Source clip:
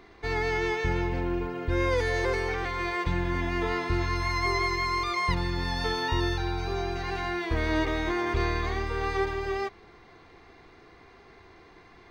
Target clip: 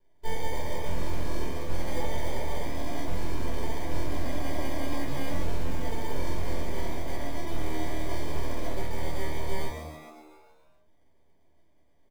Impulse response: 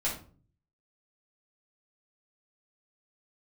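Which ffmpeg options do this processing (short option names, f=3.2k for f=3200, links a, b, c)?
-filter_complex "[0:a]afwtdn=0.0316,alimiter=limit=-23.5dB:level=0:latency=1:release=20,acrusher=samples=33:mix=1:aa=0.000001,aeval=exprs='max(val(0),0)':c=same,asplit=9[a][b][c][d][e][f][g][h][i];[b]adelay=138,afreqshift=77,volume=-7dB[j];[c]adelay=276,afreqshift=154,volume=-11.3dB[k];[d]adelay=414,afreqshift=231,volume=-15.6dB[l];[e]adelay=552,afreqshift=308,volume=-19.9dB[m];[f]adelay=690,afreqshift=385,volume=-24.2dB[n];[g]adelay=828,afreqshift=462,volume=-28.5dB[o];[h]adelay=966,afreqshift=539,volume=-32.8dB[p];[i]adelay=1104,afreqshift=616,volume=-37.1dB[q];[a][j][k][l][m][n][o][p][q]amix=inputs=9:normalize=0[r];[1:a]atrim=start_sample=2205,atrim=end_sample=4410[s];[r][s]afir=irnorm=-1:irlink=0,volume=-5.5dB"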